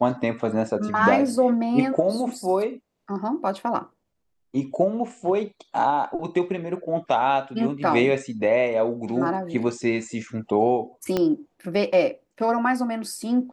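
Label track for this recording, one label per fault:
11.170000	11.170000	pop -10 dBFS

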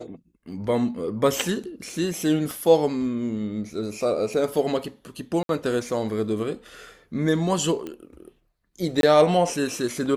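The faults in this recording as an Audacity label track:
2.510000	2.510000	pop
5.430000	5.490000	dropout 62 ms
7.870000	7.870000	pop -20 dBFS
9.010000	9.030000	dropout 22 ms

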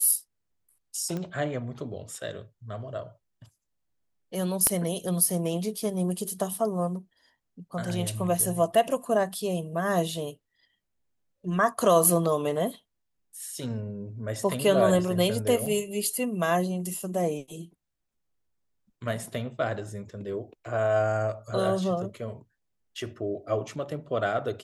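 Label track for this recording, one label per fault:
1.170000	1.170000	pop -21 dBFS
4.670000	4.670000	pop -9 dBFS
15.660000	15.660000	dropout 3.9 ms

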